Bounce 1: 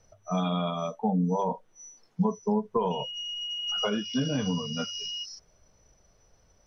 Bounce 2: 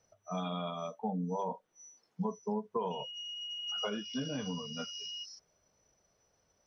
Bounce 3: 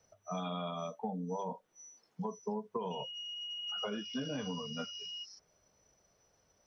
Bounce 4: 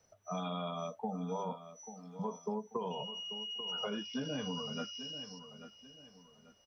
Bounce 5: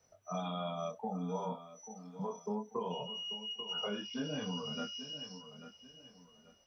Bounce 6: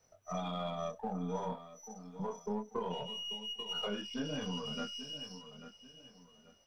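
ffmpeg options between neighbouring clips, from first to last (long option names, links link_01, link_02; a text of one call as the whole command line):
ffmpeg -i in.wav -af "highpass=frequency=190:poles=1,volume=-7dB" out.wav
ffmpeg -i in.wav -filter_complex "[0:a]acrossover=split=310|2900[link_01][link_02][link_03];[link_01]acompressor=threshold=-43dB:ratio=4[link_04];[link_02]acompressor=threshold=-39dB:ratio=4[link_05];[link_03]acompressor=threshold=-54dB:ratio=4[link_06];[link_04][link_05][link_06]amix=inputs=3:normalize=0,volume=2dB" out.wav
ffmpeg -i in.wav -filter_complex "[0:a]asplit=2[link_01][link_02];[link_02]adelay=839,lowpass=frequency=4400:poles=1,volume=-12dB,asplit=2[link_03][link_04];[link_04]adelay=839,lowpass=frequency=4400:poles=1,volume=0.34,asplit=2[link_05][link_06];[link_06]adelay=839,lowpass=frequency=4400:poles=1,volume=0.34[link_07];[link_01][link_03][link_05][link_07]amix=inputs=4:normalize=0" out.wav
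ffmpeg -i in.wav -af "flanger=delay=22.5:depth=5.3:speed=0.31,volume=2.5dB" out.wav
ffmpeg -i in.wav -af "aeval=exprs='if(lt(val(0),0),0.708*val(0),val(0))':channel_layout=same,volume=1.5dB" out.wav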